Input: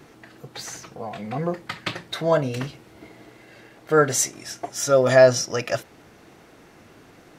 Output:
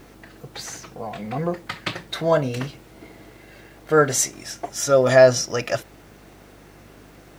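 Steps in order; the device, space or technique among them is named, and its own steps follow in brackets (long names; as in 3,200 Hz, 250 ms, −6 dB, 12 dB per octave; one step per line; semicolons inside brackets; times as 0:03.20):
video cassette with head-switching buzz (hum with harmonics 50 Hz, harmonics 14, −53 dBFS −4 dB per octave; white noise bed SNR 39 dB)
level +1 dB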